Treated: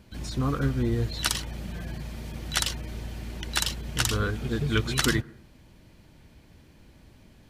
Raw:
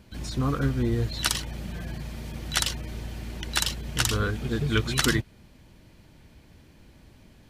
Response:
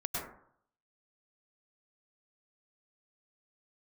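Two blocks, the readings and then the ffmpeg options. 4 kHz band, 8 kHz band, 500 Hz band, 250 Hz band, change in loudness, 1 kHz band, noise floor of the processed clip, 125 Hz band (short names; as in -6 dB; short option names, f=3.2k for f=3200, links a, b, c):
-1.0 dB, -1.0 dB, -0.5 dB, -0.5 dB, -1.0 dB, -1.0 dB, -55 dBFS, -0.5 dB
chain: -filter_complex "[0:a]asplit=2[a][b];[1:a]atrim=start_sample=2205,lowpass=1.9k[c];[b][c]afir=irnorm=-1:irlink=0,volume=-26.5dB[d];[a][d]amix=inputs=2:normalize=0,volume=-1dB"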